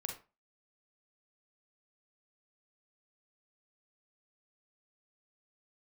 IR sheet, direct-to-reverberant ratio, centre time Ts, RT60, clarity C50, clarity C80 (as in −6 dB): 2.0 dB, 22 ms, 0.30 s, 6.5 dB, 13.5 dB